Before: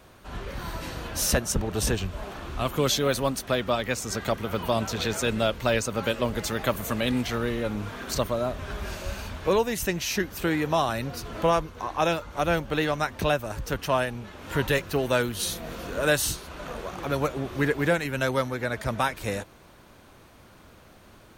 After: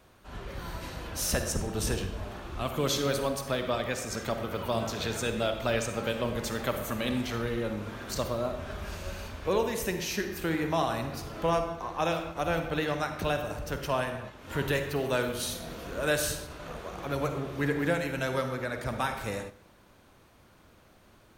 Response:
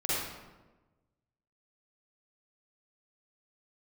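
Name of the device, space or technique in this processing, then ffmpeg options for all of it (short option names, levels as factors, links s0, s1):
keyed gated reverb: -filter_complex "[0:a]asplit=3[s0][s1][s2];[1:a]atrim=start_sample=2205[s3];[s1][s3]afir=irnorm=-1:irlink=0[s4];[s2]apad=whole_len=942573[s5];[s4][s5]sidechaingate=range=0.251:threshold=0.01:ratio=16:detection=peak,volume=0.251[s6];[s0][s6]amix=inputs=2:normalize=0,volume=0.447"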